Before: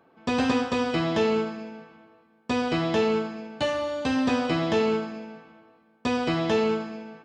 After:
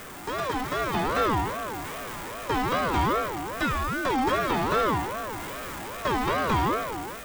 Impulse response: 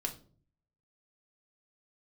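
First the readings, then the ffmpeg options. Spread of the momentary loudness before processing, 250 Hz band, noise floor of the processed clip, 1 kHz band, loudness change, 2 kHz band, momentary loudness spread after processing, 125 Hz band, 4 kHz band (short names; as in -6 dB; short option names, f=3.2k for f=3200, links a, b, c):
14 LU, -5.0 dB, -38 dBFS, +6.0 dB, -1.5 dB, +2.5 dB, 10 LU, +1.5 dB, -2.0 dB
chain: -filter_complex "[0:a]aeval=exprs='val(0)+0.5*0.0398*sgn(val(0))':c=same,dynaudnorm=f=500:g=3:m=6dB,bandreject=f=3.5k:w=12,aexciter=amount=2.7:drive=2.4:freq=7k,acrossover=split=3400[a][b];[b]acompressor=threshold=-29dB:ratio=4:attack=1:release=60[c];[a][c]amix=inputs=2:normalize=0,aeval=exprs='val(0)*sin(2*PI*720*n/s+720*0.3/2.5*sin(2*PI*2.5*n/s))':c=same,volume=-5.5dB"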